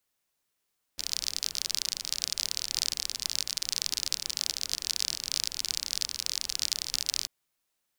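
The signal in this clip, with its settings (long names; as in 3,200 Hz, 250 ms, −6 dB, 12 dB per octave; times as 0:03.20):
rain-like ticks over hiss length 6.29 s, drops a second 40, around 4,900 Hz, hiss −19 dB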